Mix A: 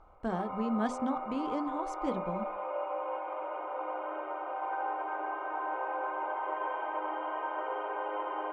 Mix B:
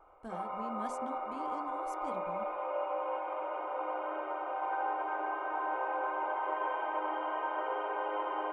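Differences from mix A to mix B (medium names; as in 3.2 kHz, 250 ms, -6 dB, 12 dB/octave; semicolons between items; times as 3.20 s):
speech -11.5 dB; master: remove distance through air 100 m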